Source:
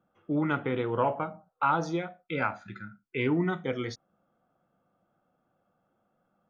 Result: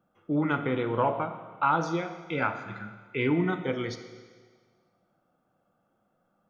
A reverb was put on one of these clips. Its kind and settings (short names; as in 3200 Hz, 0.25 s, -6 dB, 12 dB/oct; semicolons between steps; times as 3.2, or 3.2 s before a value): Schroeder reverb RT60 1.6 s, combs from 27 ms, DRR 9 dB; gain +1 dB